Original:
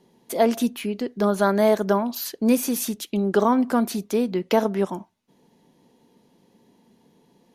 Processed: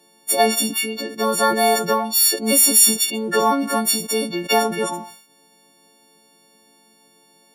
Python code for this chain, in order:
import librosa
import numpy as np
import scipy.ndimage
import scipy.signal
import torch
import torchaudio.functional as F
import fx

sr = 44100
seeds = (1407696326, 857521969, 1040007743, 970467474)

y = fx.freq_snap(x, sr, grid_st=4)
y = fx.highpass(y, sr, hz=450.0, slope=6)
y = fx.sustainer(y, sr, db_per_s=95.0)
y = y * librosa.db_to_amplitude(3.5)